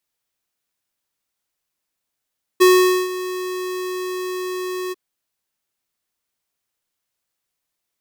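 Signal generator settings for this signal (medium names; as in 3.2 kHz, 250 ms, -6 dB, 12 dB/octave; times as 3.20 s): ADSR square 367 Hz, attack 19 ms, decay 462 ms, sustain -16 dB, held 2.32 s, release 25 ms -10 dBFS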